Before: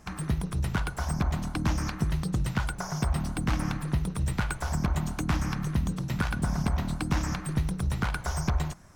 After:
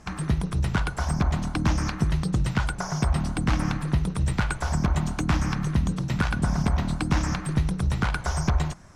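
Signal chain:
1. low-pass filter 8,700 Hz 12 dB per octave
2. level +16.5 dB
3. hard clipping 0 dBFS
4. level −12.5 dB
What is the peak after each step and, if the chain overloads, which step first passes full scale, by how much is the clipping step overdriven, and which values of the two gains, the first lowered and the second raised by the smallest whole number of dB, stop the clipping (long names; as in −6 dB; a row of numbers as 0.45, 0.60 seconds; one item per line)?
−13.0, +3.5, 0.0, −12.5 dBFS
step 2, 3.5 dB
step 2 +12.5 dB, step 4 −8.5 dB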